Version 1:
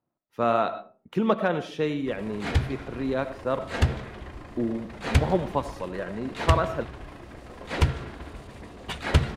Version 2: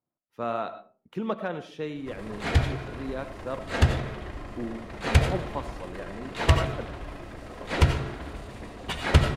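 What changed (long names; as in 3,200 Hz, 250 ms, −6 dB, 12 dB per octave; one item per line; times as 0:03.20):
speech −7.0 dB
background: send on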